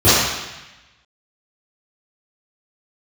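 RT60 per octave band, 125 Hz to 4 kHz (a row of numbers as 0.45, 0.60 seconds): 1.2, 1.0, 0.95, 1.1, 1.2, 1.1 seconds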